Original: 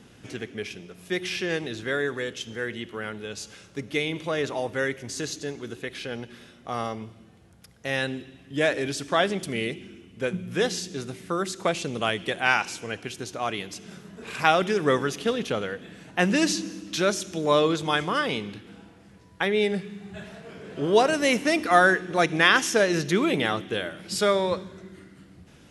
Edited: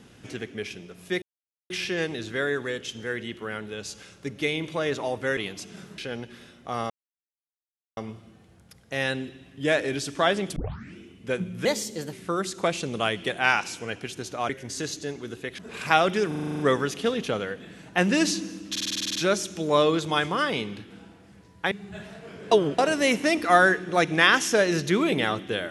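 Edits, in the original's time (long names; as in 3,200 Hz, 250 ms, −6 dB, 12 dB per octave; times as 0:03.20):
0:01.22: splice in silence 0.48 s
0:04.89–0:05.98: swap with 0:13.51–0:14.12
0:06.90: splice in silence 1.07 s
0:09.49: tape start 0.41 s
0:10.58–0:11.14: play speed 118%
0:14.81: stutter 0.04 s, 9 plays
0:16.92: stutter 0.05 s, 10 plays
0:19.48–0:19.93: remove
0:20.73–0:21.00: reverse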